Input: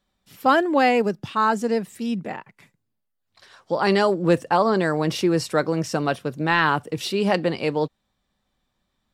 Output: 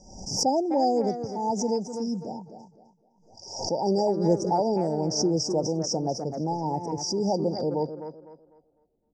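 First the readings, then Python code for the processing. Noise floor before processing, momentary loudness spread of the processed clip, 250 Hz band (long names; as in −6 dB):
−76 dBFS, 9 LU, −3.5 dB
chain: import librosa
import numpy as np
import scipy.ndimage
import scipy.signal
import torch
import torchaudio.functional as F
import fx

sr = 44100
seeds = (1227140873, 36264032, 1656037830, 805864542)

y = fx.filter_sweep_lowpass(x, sr, from_hz=5900.0, to_hz=340.0, start_s=7.44, end_s=9.06, q=5.1)
y = fx.brickwall_bandstop(y, sr, low_hz=960.0, high_hz=4700.0)
y = fx.air_absorb(y, sr, metres=71.0)
y = fx.echo_tape(y, sr, ms=253, feedback_pct=32, wet_db=-9, lp_hz=4700.0, drive_db=11.0, wow_cents=35)
y = fx.pre_swell(y, sr, db_per_s=72.0)
y = F.gain(torch.from_numpy(y), -4.5).numpy()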